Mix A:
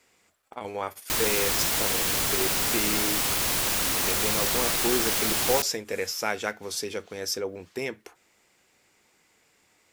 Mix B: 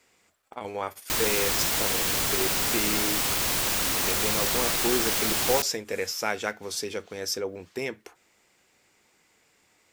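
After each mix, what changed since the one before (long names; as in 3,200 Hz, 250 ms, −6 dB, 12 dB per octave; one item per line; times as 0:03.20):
master: add parametric band 11,000 Hz −3.5 dB 0.21 octaves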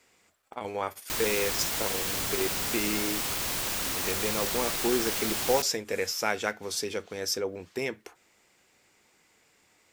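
background −5.0 dB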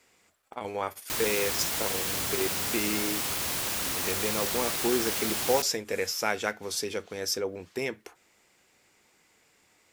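background: add high-pass filter 49 Hz
master: add parametric band 11,000 Hz +3.5 dB 0.21 octaves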